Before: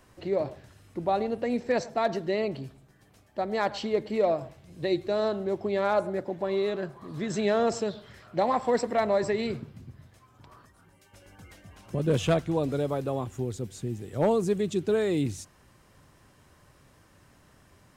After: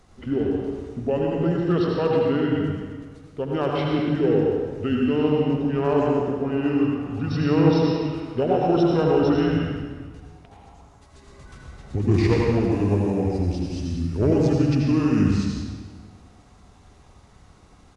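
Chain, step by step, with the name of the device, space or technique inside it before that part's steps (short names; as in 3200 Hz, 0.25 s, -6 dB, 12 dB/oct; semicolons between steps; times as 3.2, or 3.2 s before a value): monster voice (pitch shift -6 st; low shelf 110 Hz +6 dB; echo 79 ms -8.5 dB; reverb RT60 1.6 s, pre-delay 85 ms, DRR -1 dB); gain +1.5 dB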